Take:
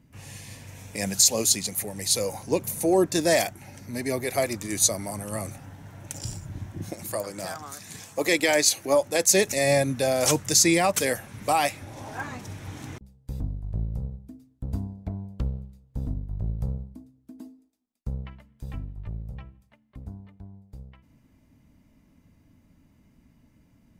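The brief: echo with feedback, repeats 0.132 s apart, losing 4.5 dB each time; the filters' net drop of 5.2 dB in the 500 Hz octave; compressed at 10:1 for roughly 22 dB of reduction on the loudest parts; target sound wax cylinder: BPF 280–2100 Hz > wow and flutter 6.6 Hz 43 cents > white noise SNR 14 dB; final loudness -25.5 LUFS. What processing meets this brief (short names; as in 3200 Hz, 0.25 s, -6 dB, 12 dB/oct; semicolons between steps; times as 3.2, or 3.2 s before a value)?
bell 500 Hz -6 dB; compressor 10:1, threshold -38 dBFS; BPF 280–2100 Hz; feedback echo 0.132 s, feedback 60%, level -4.5 dB; wow and flutter 6.6 Hz 43 cents; white noise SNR 14 dB; gain +21.5 dB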